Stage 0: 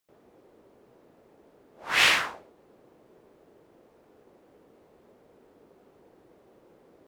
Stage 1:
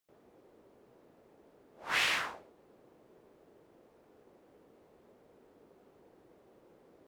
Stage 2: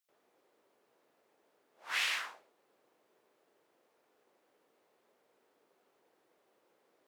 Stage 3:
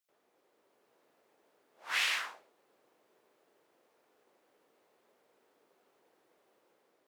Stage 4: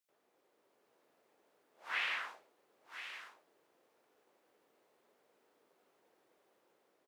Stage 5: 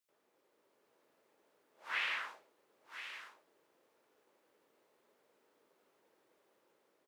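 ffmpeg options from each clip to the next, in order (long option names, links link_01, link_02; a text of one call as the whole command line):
ffmpeg -i in.wav -af "alimiter=limit=-15.5dB:level=0:latency=1:release=248,volume=-4dB" out.wav
ffmpeg -i in.wav -af "highpass=frequency=1500:poles=1,volume=-1.5dB" out.wav
ffmpeg -i in.wav -af "dynaudnorm=framelen=270:gausssize=5:maxgain=3dB,volume=-1dB" out.wav
ffmpeg -i in.wav -filter_complex "[0:a]aecho=1:1:1022:0.266,acrossover=split=3100[link_01][link_02];[link_02]acompressor=threshold=-57dB:ratio=4:attack=1:release=60[link_03];[link_01][link_03]amix=inputs=2:normalize=0,volume=-2.5dB" out.wav
ffmpeg -i in.wav -af "bandreject=frequency=730:width=12" out.wav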